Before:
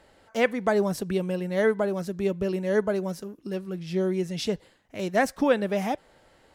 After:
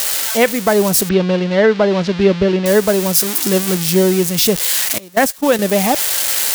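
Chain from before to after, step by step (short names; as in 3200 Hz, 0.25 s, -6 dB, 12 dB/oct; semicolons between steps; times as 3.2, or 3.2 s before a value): switching spikes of -19 dBFS; 1.09–2.66 LPF 4100 Hz 24 dB/oct; 4.98–5.59 gate -21 dBFS, range -22 dB; vocal rider 0.5 s; maximiser +13 dB; gain -1 dB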